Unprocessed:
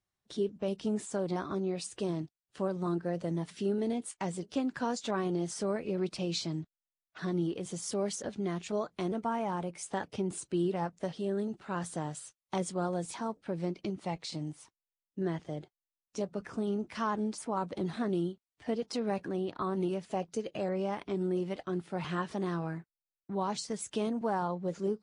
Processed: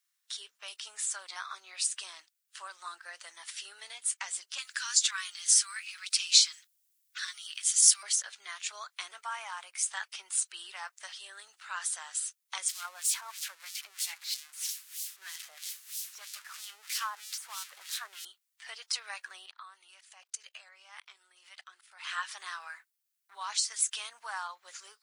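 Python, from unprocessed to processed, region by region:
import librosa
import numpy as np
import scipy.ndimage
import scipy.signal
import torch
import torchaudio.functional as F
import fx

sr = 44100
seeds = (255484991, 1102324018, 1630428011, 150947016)

y = fx.chain(x, sr, fx.highpass(hz=1300.0, slope=24),
    fx.high_shelf(hz=3200.0, db=9.5), at=(4.58, 8.03))
y = fx.chain(y, sr, fx.crossing_spikes(level_db=-30.0),
    fx.filter_lfo_bandpass(shape='sine', hz=3.1, low_hz=540.0, high_hz=4900.0, q=0.98), at=(12.68, 18.25))
y = fx.chain(y, sr, fx.low_shelf(hz=190.0, db=-6.5),
    fx.level_steps(step_db=23), at=(19.46, 22.07))
y = scipy.signal.sosfilt(scipy.signal.butter(4, 1300.0, 'highpass', fs=sr, output='sos'), y)
y = fx.high_shelf(y, sr, hz=6000.0, db=9.5)
y = y * 10.0 ** (6.0 / 20.0)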